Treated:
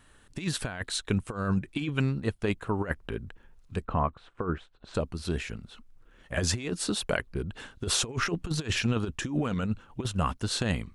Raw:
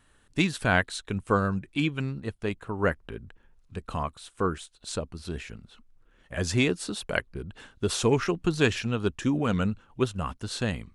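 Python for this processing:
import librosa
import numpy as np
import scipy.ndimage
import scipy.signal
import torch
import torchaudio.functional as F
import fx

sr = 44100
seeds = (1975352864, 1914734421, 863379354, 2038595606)

y = fx.over_compress(x, sr, threshold_db=-28.0, ratio=-0.5)
y = fx.lowpass(y, sr, hz=1600.0, slope=12, at=(3.84, 4.94), fade=0.02)
y = y * librosa.db_to_amplitude(1.0)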